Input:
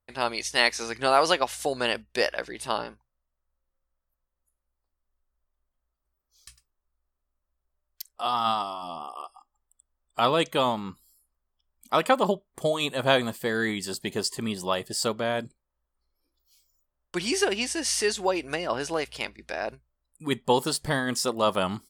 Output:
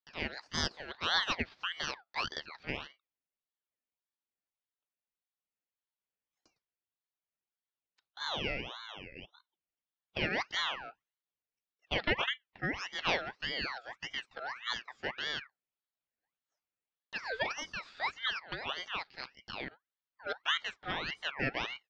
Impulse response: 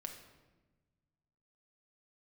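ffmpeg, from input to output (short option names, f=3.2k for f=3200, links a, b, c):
-af "asetrate=55563,aresample=44100,atempo=0.793701,highpass=f=170:t=q:w=0.5412,highpass=f=170:t=q:w=1.307,lowpass=f=3.4k:t=q:w=0.5176,lowpass=f=3.4k:t=q:w=0.7071,lowpass=f=3.4k:t=q:w=1.932,afreqshift=65,aeval=exprs='val(0)*sin(2*PI*1800*n/s+1800*0.45/1.7*sin(2*PI*1.7*n/s))':c=same,volume=-7dB"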